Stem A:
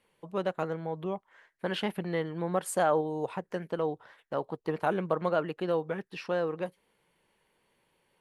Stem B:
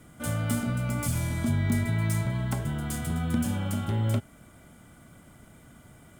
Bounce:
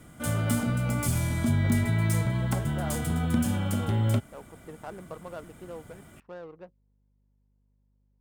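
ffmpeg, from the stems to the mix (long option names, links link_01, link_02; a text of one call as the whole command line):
ffmpeg -i stem1.wav -i stem2.wav -filter_complex "[0:a]aeval=exprs='val(0)+0.00178*(sin(2*PI*50*n/s)+sin(2*PI*2*50*n/s)/2+sin(2*PI*3*50*n/s)/3+sin(2*PI*4*50*n/s)/4+sin(2*PI*5*50*n/s)/5)':channel_layout=same,adynamicsmooth=sensitivity=4.5:basefreq=680,volume=-12.5dB[link_01];[1:a]volume=1.5dB[link_02];[link_01][link_02]amix=inputs=2:normalize=0" out.wav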